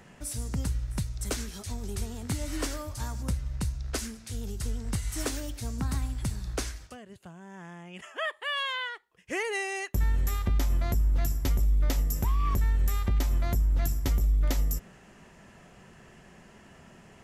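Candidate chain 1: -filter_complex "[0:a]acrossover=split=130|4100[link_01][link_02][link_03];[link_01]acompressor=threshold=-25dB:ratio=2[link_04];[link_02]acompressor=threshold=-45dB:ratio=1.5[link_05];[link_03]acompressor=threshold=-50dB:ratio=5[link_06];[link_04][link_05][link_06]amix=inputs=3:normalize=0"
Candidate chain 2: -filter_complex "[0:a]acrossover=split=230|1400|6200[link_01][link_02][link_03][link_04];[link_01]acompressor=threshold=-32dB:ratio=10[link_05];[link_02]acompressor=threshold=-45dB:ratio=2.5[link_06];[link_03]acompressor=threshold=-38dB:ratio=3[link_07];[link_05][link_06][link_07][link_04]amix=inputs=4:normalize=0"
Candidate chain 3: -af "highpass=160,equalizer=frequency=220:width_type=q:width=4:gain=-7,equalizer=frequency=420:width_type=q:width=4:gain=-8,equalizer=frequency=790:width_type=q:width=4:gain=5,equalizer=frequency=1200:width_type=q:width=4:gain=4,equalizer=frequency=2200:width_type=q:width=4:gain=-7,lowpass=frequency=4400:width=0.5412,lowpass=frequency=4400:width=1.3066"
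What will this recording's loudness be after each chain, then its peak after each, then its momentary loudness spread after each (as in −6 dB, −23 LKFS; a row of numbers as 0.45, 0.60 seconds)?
−33.0, −36.5, −38.5 LKFS; −17.5, −17.5, −19.5 dBFS; 17, 18, 22 LU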